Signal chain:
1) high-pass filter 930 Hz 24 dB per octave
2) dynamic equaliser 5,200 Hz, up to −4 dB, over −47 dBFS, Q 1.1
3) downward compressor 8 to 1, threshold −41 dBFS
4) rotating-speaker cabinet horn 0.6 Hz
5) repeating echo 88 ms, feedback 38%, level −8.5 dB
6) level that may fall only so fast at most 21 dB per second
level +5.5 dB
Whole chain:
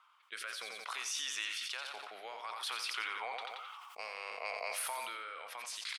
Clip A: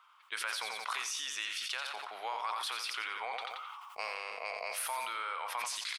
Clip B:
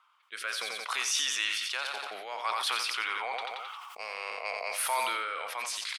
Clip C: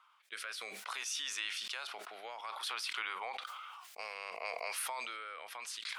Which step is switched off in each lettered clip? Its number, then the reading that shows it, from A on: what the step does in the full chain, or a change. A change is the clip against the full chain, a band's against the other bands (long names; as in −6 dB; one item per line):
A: 4, 1 kHz band +3.5 dB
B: 3, average gain reduction 6.5 dB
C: 5, 250 Hz band +2.0 dB